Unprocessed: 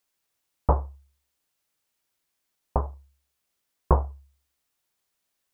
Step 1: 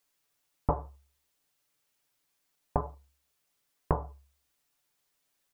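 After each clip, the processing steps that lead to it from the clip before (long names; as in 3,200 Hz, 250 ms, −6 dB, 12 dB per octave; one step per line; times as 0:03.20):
comb filter 6.9 ms, depth 55%
downward compressor 6 to 1, threshold −23 dBFS, peak gain reduction 9 dB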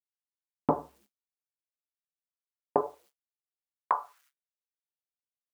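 bit reduction 11 bits
downward expander −54 dBFS
high-pass filter sweep 240 Hz → 1,600 Hz, 0:02.34–0:04.33
level +2 dB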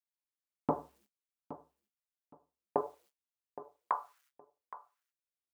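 repeating echo 818 ms, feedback 20%, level −15 dB
level −5.5 dB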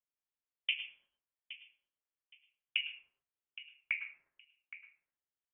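voice inversion scrambler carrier 3,300 Hz
on a send at −8.5 dB: convolution reverb RT60 0.35 s, pre-delay 97 ms
on the sum: level −3 dB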